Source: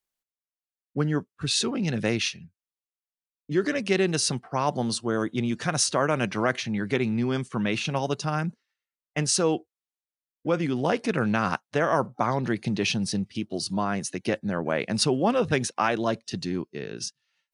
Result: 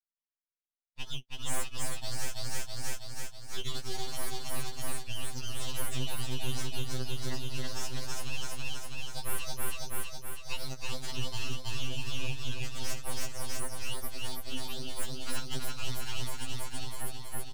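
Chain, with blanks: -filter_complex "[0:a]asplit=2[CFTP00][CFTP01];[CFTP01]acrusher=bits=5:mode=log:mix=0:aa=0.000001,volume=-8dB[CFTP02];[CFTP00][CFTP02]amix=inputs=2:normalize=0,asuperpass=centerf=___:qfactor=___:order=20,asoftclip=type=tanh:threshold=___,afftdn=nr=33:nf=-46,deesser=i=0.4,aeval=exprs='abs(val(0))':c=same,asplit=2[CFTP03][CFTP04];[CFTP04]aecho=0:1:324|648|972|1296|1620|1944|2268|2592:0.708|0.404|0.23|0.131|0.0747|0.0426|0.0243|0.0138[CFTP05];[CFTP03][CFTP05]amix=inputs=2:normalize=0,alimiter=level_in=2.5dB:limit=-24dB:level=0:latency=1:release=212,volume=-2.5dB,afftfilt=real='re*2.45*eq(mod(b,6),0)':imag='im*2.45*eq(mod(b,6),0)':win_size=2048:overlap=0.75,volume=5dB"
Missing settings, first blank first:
2900, 0.58, -21dB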